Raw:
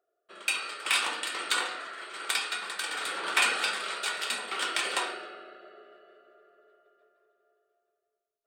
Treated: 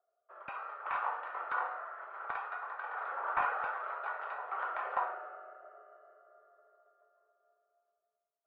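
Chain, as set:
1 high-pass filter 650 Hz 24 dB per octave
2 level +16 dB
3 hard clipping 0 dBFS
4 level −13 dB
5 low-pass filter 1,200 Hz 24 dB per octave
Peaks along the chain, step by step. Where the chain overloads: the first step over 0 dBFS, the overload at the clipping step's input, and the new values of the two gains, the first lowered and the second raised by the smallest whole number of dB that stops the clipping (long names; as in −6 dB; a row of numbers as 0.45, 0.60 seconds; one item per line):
−11.5, +4.5, 0.0, −13.0, −19.0 dBFS
step 2, 4.5 dB
step 2 +11 dB, step 4 −8 dB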